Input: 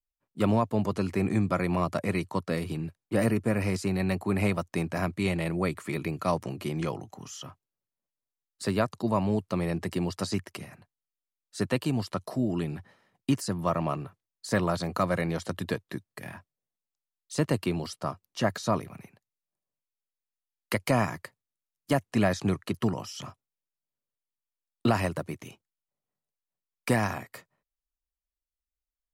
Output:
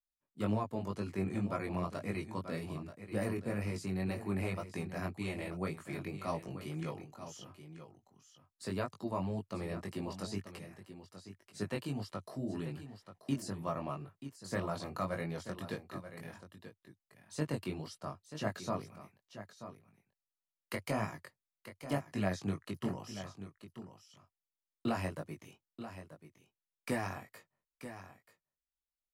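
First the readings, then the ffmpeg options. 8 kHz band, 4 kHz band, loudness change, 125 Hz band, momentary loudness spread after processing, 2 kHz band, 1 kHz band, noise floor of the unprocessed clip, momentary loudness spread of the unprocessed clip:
-10.0 dB, -9.5 dB, -10.0 dB, -9.5 dB, 16 LU, -9.5 dB, -9.5 dB, under -85 dBFS, 16 LU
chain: -filter_complex "[0:a]flanger=delay=19:depth=2.9:speed=1.9,asplit=2[s0][s1];[s1]aecho=0:1:934:0.266[s2];[s0][s2]amix=inputs=2:normalize=0,volume=0.447"

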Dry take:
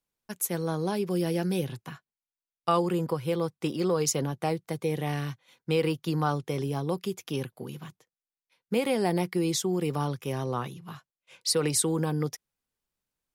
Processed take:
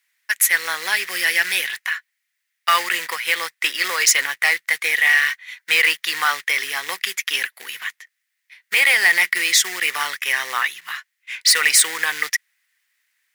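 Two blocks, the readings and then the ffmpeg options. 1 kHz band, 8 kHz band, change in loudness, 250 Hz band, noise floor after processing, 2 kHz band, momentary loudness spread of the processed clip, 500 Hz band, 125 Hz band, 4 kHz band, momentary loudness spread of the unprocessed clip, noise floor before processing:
+7.5 dB, +13.5 dB, +11.0 dB, under -15 dB, -76 dBFS, +25.5 dB, 12 LU, -8.0 dB, under -25 dB, +16.5 dB, 15 LU, under -85 dBFS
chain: -af "acrusher=bits=5:mode=log:mix=0:aa=0.000001,highpass=f=1900:t=q:w=7,apsyclip=15,volume=0.398"

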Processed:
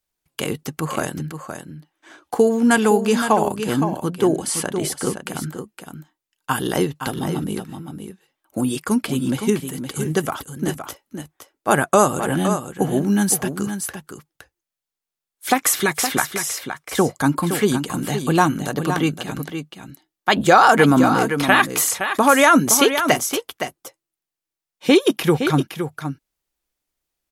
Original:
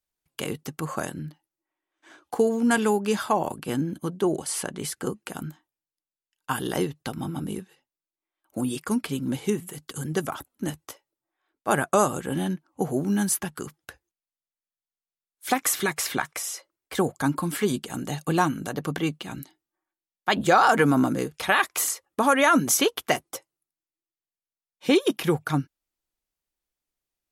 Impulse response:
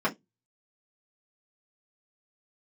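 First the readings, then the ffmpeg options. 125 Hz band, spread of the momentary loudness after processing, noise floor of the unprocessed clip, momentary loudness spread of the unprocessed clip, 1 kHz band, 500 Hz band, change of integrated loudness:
+6.5 dB, 17 LU, under -85 dBFS, 17 LU, +6.5 dB, +6.5 dB, +6.0 dB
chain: -af "aecho=1:1:516:0.376,volume=2"

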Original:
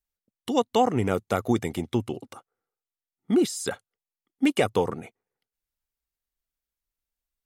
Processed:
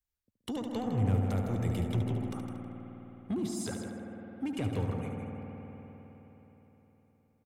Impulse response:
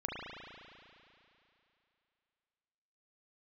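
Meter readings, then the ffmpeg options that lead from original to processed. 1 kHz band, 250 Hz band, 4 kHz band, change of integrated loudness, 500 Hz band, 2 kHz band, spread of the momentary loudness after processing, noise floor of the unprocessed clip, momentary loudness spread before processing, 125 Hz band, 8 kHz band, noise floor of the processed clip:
-14.0 dB, -7.0 dB, -12.0 dB, -8.5 dB, -12.5 dB, -12.5 dB, 18 LU, under -85 dBFS, 14 LU, +2.5 dB, -9.0 dB, -85 dBFS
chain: -filter_complex "[0:a]acrossover=split=200[s0][s1];[s1]acompressor=threshold=0.0251:ratio=6[s2];[s0][s2]amix=inputs=2:normalize=0,asoftclip=type=tanh:threshold=0.0531,equalizer=f=86:t=o:w=1.2:g=10.5,aecho=1:1:159|318|477:0.355|0.0674|0.0128,asplit=2[s3][s4];[1:a]atrim=start_sample=2205,asetrate=29988,aresample=44100,adelay=73[s5];[s4][s5]afir=irnorm=-1:irlink=0,volume=0.398[s6];[s3][s6]amix=inputs=2:normalize=0,volume=0.631"

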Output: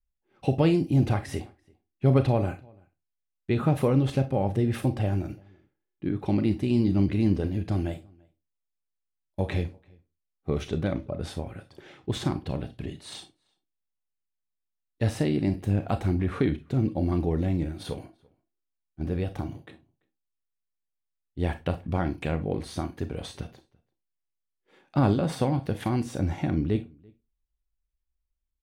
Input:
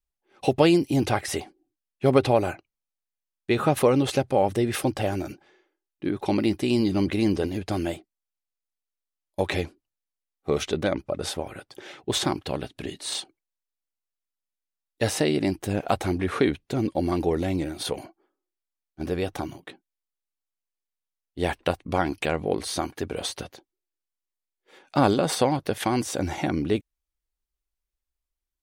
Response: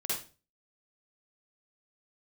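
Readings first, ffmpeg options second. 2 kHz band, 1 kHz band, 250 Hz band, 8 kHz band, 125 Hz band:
-7.5 dB, -7.0 dB, -1.0 dB, -13.0 dB, +4.5 dB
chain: -filter_complex "[0:a]bass=f=250:g=13,treble=f=4000:g=-8,asplit=2[s0][s1];[s1]adelay=338.2,volume=0.0398,highshelf=f=4000:g=-7.61[s2];[s0][s2]amix=inputs=2:normalize=0,asplit=2[s3][s4];[1:a]atrim=start_sample=2205,asetrate=70560,aresample=44100,highshelf=f=4700:g=8.5[s5];[s4][s5]afir=irnorm=-1:irlink=0,volume=0.335[s6];[s3][s6]amix=inputs=2:normalize=0,volume=0.376"

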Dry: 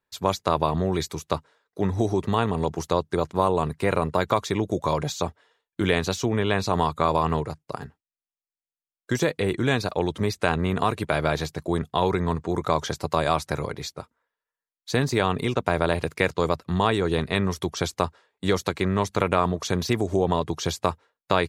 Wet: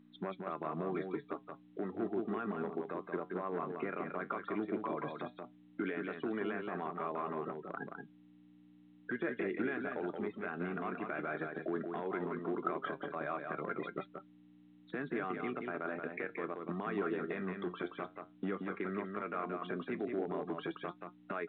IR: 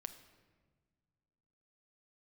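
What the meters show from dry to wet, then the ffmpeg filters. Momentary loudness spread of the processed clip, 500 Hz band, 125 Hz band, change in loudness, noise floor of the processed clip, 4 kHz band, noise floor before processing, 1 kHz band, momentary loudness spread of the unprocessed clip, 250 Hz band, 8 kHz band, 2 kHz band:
8 LU, -14.0 dB, -21.5 dB, -14.0 dB, -62 dBFS, -25.5 dB, under -85 dBFS, -15.0 dB, 7 LU, -12.0 dB, under -40 dB, -11.5 dB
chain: -af "afftfilt=real='re*gte(hypot(re,im),0.0224)':imag='im*gte(hypot(re,im),0.0224)':win_size=1024:overlap=0.75,acompressor=threshold=0.0316:ratio=12,alimiter=level_in=1.06:limit=0.0631:level=0:latency=1:release=24,volume=0.944,acontrast=25,flanger=delay=4.7:depth=6.8:regen=72:speed=0.14:shape=triangular,asoftclip=type=hard:threshold=0.0473,aeval=exprs='val(0)+0.00282*(sin(2*PI*60*n/s)+sin(2*PI*2*60*n/s)/2+sin(2*PI*3*60*n/s)/3+sin(2*PI*4*60*n/s)/4+sin(2*PI*5*60*n/s)/5)':c=same,highpass=f=220:w=0.5412,highpass=f=220:w=1.3066,equalizer=f=510:t=q:w=4:g=-7,equalizer=f=930:t=q:w=4:g=-10,equalizer=f=1400:t=q:w=4:g=6,lowpass=f=2200:w=0.5412,lowpass=f=2200:w=1.3066,aecho=1:1:177:0.562,volume=1.19" -ar 8000 -c:a pcm_mulaw

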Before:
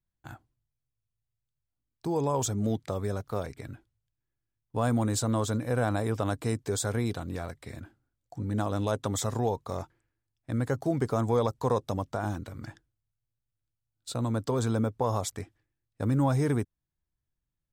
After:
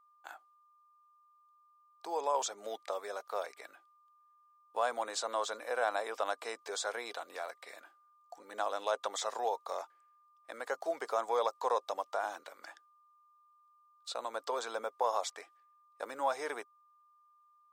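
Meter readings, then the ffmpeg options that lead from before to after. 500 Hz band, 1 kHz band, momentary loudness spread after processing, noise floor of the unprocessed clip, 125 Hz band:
-5.0 dB, 0.0 dB, 19 LU, under -85 dBFS, under -40 dB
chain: -filter_complex "[0:a]acrossover=split=6600[s0][s1];[s1]acompressor=threshold=0.001:ratio=4:attack=1:release=60[s2];[s0][s2]amix=inputs=2:normalize=0,highpass=f=560:w=0.5412,highpass=f=560:w=1.3066,aeval=exprs='val(0)+0.000631*sin(2*PI*1200*n/s)':c=same"

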